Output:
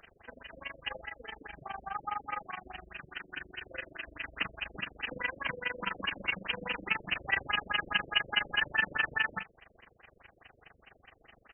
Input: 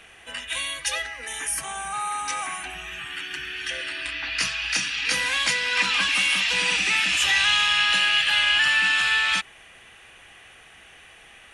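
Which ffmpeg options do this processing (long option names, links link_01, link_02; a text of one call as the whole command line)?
ffmpeg -i in.wav -filter_complex "[0:a]tremolo=f=24:d=0.919,aresample=16000,acrusher=bits=2:mode=log:mix=0:aa=0.000001,aresample=44100,asplit=2[link_01][link_02];[link_02]adelay=42,volume=-12.5dB[link_03];[link_01][link_03]amix=inputs=2:normalize=0,afftfilt=real='re*lt(b*sr/1024,570*pow(3200/570,0.5+0.5*sin(2*PI*4.8*pts/sr)))':imag='im*lt(b*sr/1024,570*pow(3200/570,0.5+0.5*sin(2*PI*4.8*pts/sr)))':win_size=1024:overlap=0.75,volume=-2.5dB" out.wav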